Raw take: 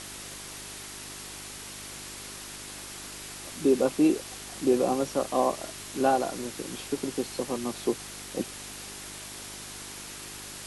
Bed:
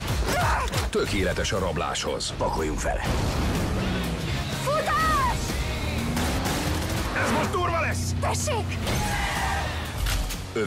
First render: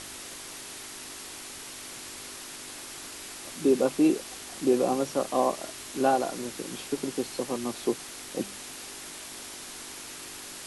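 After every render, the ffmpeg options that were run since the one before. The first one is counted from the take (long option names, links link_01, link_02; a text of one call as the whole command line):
ffmpeg -i in.wav -af "bandreject=frequency=50:width_type=h:width=4,bandreject=frequency=100:width_type=h:width=4,bandreject=frequency=150:width_type=h:width=4,bandreject=frequency=200:width_type=h:width=4" out.wav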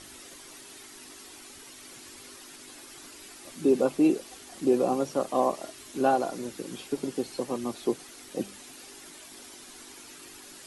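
ffmpeg -i in.wav -af "afftdn=noise_reduction=9:noise_floor=-42" out.wav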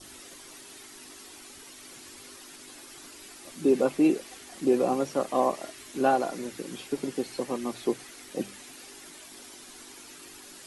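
ffmpeg -i in.wav -af "bandreject=frequency=60:width_type=h:width=6,bandreject=frequency=120:width_type=h:width=6,adynamicequalizer=threshold=0.00355:dfrequency=2000:dqfactor=1.7:tfrequency=2000:tqfactor=1.7:attack=5:release=100:ratio=0.375:range=2.5:mode=boostabove:tftype=bell" out.wav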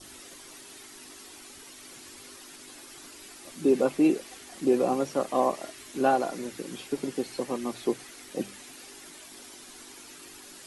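ffmpeg -i in.wav -af anull out.wav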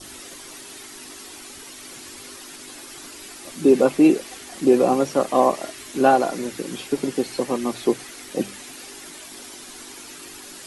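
ffmpeg -i in.wav -af "volume=7.5dB" out.wav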